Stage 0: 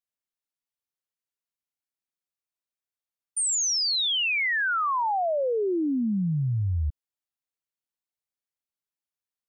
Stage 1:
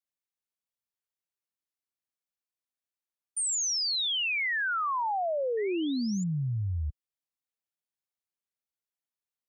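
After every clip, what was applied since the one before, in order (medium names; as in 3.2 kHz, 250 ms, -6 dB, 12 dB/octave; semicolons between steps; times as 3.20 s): high-pass 42 Hz 6 dB/octave; painted sound rise, 5.57–6.24 s, 1.8–7.3 kHz -40 dBFS; trim -4 dB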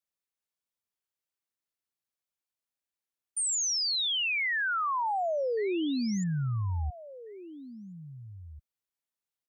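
echo from a far wall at 290 m, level -15 dB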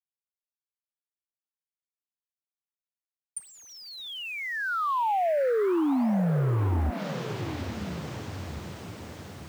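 echo that smears into a reverb 904 ms, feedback 60%, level -11 dB; low-pass that closes with the level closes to 670 Hz, closed at -24.5 dBFS; bit crusher 10-bit; trim +5 dB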